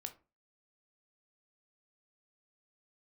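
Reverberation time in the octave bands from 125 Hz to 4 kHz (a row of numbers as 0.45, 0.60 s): 0.35, 0.40, 0.35, 0.30, 0.25, 0.20 s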